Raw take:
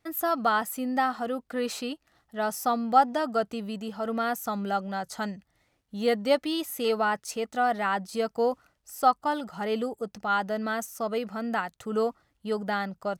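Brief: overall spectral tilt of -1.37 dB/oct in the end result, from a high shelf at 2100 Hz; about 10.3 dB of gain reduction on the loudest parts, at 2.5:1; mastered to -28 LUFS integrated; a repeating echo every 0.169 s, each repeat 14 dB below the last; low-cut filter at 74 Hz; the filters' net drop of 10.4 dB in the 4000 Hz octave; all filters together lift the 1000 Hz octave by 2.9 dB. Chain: HPF 74 Hz; bell 1000 Hz +6 dB; high shelf 2100 Hz -6 dB; bell 4000 Hz -9 dB; compressor 2.5:1, threshold -28 dBFS; feedback echo 0.169 s, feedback 20%, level -14 dB; gain +4 dB

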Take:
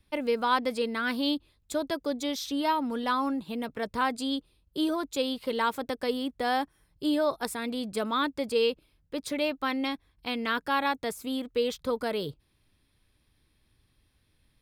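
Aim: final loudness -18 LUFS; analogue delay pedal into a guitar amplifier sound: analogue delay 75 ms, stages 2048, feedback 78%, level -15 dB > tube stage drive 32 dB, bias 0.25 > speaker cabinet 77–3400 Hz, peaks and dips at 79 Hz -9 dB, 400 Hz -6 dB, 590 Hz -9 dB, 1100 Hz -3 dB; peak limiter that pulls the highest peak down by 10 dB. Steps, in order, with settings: limiter -24 dBFS; analogue delay 75 ms, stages 2048, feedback 78%, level -15 dB; tube stage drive 32 dB, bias 0.25; speaker cabinet 77–3400 Hz, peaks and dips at 79 Hz -9 dB, 400 Hz -6 dB, 590 Hz -9 dB, 1100 Hz -3 dB; gain +22 dB

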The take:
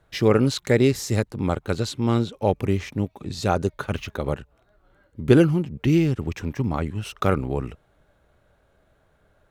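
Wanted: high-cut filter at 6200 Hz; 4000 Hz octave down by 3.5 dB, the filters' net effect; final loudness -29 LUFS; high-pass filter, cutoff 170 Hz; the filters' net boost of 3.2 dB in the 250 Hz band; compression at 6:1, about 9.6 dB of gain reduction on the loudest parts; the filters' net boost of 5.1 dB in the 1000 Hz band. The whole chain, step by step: HPF 170 Hz; LPF 6200 Hz; bell 250 Hz +5 dB; bell 1000 Hz +7 dB; bell 4000 Hz -4 dB; compressor 6:1, threshold -18 dBFS; gain -2.5 dB

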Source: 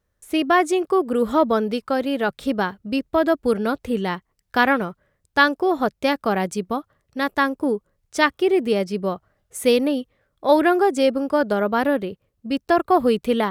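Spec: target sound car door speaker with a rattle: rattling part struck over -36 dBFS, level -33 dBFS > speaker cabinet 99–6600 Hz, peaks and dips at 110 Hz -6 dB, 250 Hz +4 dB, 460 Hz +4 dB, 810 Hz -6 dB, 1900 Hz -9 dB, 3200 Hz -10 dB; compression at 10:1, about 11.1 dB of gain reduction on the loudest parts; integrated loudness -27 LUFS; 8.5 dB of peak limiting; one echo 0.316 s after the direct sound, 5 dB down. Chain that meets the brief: compressor 10:1, threshold -22 dBFS; limiter -20.5 dBFS; echo 0.316 s -5 dB; rattling part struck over -36 dBFS, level -33 dBFS; speaker cabinet 99–6600 Hz, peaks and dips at 110 Hz -6 dB, 250 Hz +4 dB, 460 Hz +4 dB, 810 Hz -6 dB, 1900 Hz -9 dB, 3200 Hz -10 dB; gain +1.5 dB

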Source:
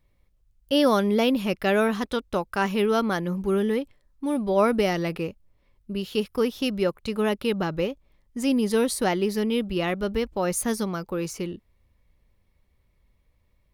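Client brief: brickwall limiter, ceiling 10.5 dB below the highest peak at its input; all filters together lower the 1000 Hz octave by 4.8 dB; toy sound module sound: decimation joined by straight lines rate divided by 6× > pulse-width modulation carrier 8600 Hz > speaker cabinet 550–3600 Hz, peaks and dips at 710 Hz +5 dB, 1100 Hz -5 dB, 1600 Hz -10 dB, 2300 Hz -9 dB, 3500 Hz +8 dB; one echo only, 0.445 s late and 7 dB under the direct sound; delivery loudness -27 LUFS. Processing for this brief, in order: bell 1000 Hz -6.5 dB; limiter -20.5 dBFS; echo 0.445 s -7 dB; decimation joined by straight lines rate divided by 6×; pulse-width modulation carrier 8600 Hz; speaker cabinet 550–3600 Hz, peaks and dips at 710 Hz +5 dB, 1100 Hz -5 dB, 1600 Hz -10 dB, 2300 Hz -9 dB, 3500 Hz +8 dB; gain +10 dB

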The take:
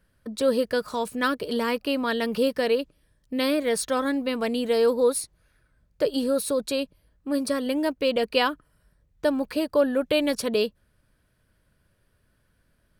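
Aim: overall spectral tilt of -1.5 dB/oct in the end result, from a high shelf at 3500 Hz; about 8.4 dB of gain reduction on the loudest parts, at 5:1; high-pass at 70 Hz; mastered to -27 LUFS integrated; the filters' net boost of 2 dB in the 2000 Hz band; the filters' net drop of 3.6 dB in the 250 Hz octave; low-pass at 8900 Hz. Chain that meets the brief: HPF 70 Hz; LPF 8900 Hz; bell 250 Hz -4 dB; bell 2000 Hz +4 dB; high shelf 3500 Hz -4.5 dB; compressor 5:1, threshold -27 dBFS; gain +5 dB

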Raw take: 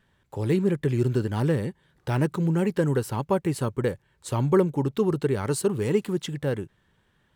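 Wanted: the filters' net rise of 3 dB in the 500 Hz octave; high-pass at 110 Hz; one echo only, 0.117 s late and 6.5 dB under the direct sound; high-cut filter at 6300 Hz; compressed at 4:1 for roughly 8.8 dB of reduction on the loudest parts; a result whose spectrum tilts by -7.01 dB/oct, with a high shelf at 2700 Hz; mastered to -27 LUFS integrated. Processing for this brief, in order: HPF 110 Hz; LPF 6300 Hz; bell 500 Hz +4 dB; high shelf 2700 Hz -3.5 dB; compressor 4:1, threshold -24 dBFS; echo 0.117 s -6.5 dB; gain +2 dB

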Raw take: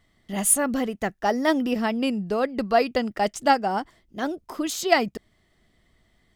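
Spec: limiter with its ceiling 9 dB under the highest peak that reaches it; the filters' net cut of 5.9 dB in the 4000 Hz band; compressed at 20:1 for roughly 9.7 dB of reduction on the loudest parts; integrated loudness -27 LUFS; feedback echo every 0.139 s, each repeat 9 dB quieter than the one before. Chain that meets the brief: bell 4000 Hz -8.5 dB; compressor 20:1, threshold -22 dBFS; limiter -21.5 dBFS; feedback echo 0.139 s, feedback 35%, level -9 dB; gain +3.5 dB

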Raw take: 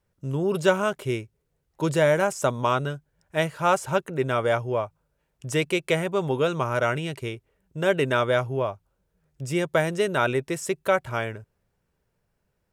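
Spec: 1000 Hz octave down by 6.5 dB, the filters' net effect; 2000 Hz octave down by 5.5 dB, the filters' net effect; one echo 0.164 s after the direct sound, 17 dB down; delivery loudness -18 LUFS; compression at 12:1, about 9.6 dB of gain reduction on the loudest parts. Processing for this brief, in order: bell 1000 Hz -7.5 dB; bell 2000 Hz -4.5 dB; compressor 12:1, threshold -27 dBFS; echo 0.164 s -17 dB; gain +15 dB

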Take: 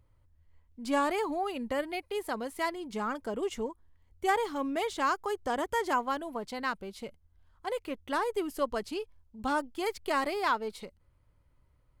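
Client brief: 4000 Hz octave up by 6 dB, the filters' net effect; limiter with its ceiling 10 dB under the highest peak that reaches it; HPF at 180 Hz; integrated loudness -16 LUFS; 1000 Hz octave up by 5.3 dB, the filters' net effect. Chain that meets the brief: HPF 180 Hz; bell 1000 Hz +6 dB; bell 4000 Hz +7.5 dB; gain +16.5 dB; limiter -5 dBFS

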